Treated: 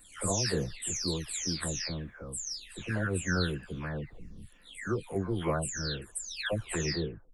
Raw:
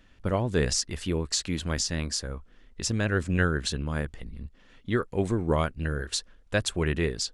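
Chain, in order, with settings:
every frequency bin delayed by itself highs early, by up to 507 ms
high-shelf EQ 9,600 Hz +11 dB
level −4 dB

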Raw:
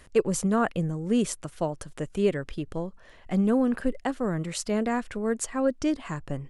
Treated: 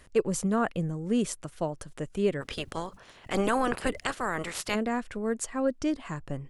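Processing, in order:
0:02.40–0:04.74: ceiling on every frequency bin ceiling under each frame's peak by 25 dB
level −2.5 dB

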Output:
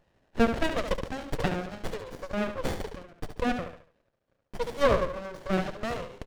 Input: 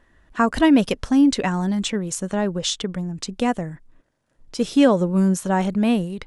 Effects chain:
Chebyshev band-pass filter 490–5,400 Hz, order 4
notch filter 2,200 Hz, Q 6.3
on a send: repeating echo 71 ms, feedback 37%, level −8 dB
on the sum: windowed peak hold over 33 samples

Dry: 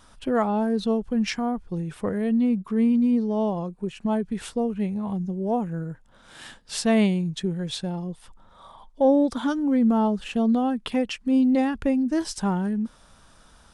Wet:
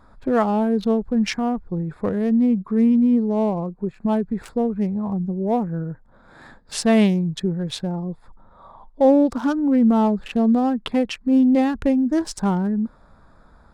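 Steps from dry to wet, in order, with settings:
adaptive Wiener filter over 15 samples
level +4 dB

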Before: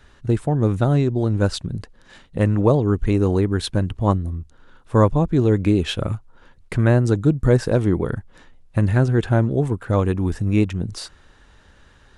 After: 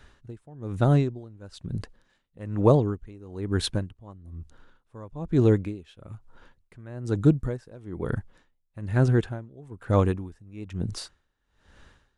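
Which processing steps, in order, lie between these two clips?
tremolo with a sine in dB 1.1 Hz, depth 26 dB
level −1.5 dB

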